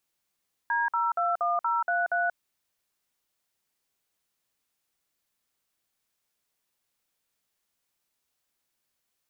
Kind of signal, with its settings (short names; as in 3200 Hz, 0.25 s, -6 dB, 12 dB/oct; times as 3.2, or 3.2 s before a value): DTMF "D021033", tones 0.183 s, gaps 53 ms, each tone -26 dBFS